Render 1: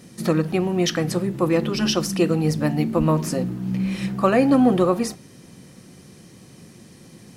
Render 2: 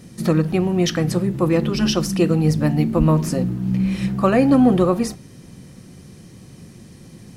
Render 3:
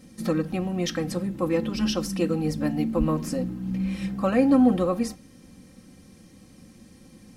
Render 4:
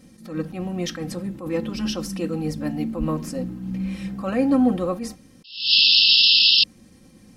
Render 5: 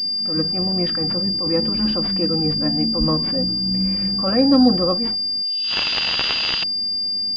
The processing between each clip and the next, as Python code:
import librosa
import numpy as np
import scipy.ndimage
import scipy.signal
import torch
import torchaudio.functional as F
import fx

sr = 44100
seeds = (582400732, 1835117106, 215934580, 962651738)

y1 = fx.low_shelf(x, sr, hz=130.0, db=12.0)
y2 = y1 + 0.62 * np.pad(y1, (int(3.8 * sr / 1000.0), 0))[:len(y1)]
y2 = y2 * 10.0 ** (-8.0 / 20.0)
y3 = fx.spec_paint(y2, sr, seeds[0], shape='noise', start_s=5.44, length_s=1.2, low_hz=2600.0, high_hz=5400.0, level_db=-15.0)
y3 = fx.attack_slew(y3, sr, db_per_s=120.0)
y4 = fx.pwm(y3, sr, carrier_hz=4800.0)
y4 = y4 * 10.0 ** (4.0 / 20.0)